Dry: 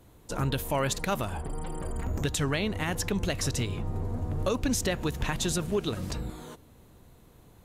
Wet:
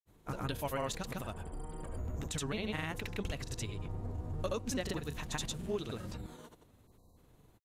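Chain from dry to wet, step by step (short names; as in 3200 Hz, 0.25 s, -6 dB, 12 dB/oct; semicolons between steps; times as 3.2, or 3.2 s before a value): spectral delete 6.89–7.11, 1200–3800 Hz; grains, pitch spread up and down by 0 st; gain -7 dB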